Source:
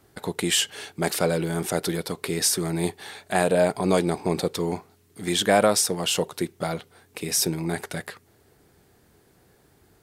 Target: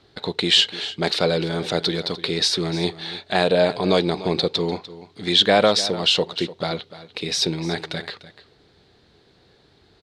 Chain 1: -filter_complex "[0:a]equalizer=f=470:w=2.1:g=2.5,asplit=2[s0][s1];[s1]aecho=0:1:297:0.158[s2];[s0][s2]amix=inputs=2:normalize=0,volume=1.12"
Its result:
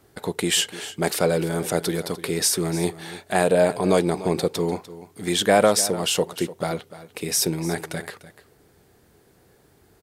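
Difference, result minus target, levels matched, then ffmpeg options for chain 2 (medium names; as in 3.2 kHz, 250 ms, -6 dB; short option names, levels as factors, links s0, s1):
4 kHz band -6.0 dB
-filter_complex "[0:a]lowpass=f=4000:t=q:w=4.5,equalizer=f=470:w=2.1:g=2.5,asplit=2[s0][s1];[s1]aecho=0:1:297:0.158[s2];[s0][s2]amix=inputs=2:normalize=0,volume=1.12"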